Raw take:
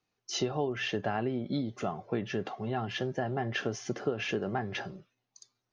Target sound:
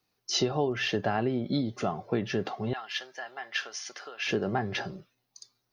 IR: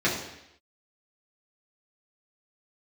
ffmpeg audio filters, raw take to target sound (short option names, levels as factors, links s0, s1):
-filter_complex "[0:a]asettb=1/sr,asplit=3[s0][s1][s2];[s0]atrim=end=2.734[s3];[s1]atrim=start=2.73:end=4.27,asetpts=PTS-STARTPTS,afade=t=in:d=0.004:c=qsin,afade=t=out:st=1.536:d=0.004:c=qsin,highpass=1300[s4];[s2]atrim=start=4.266[s5];[s3][s4]acrossfade=d=0.004:c1=hsin:c2=qsin[s6];[s6][s5]acrossfade=d=0.004:c1=qsin:c2=hsin,acrossover=split=2200[s7][s8];[s8]aexciter=amount=2:drive=1.3:freq=4000[s9];[s7][s9]amix=inputs=2:normalize=0,volume=1.5"